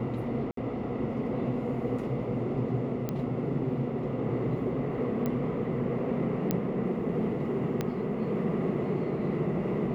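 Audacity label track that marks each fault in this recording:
0.510000	0.570000	gap 63 ms
3.090000	3.090000	pop -18 dBFS
5.260000	5.260000	pop -19 dBFS
6.510000	6.510000	pop -13 dBFS
7.810000	7.810000	pop -16 dBFS

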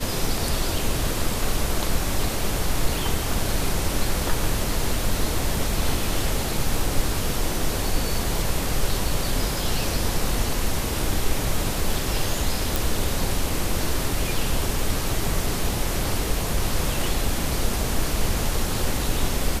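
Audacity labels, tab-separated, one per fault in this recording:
12.760000	12.760000	pop

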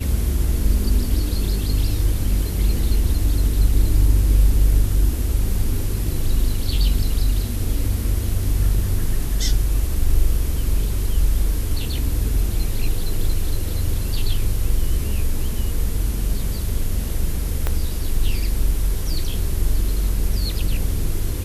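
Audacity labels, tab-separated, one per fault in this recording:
17.670000	17.670000	pop -8 dBFS

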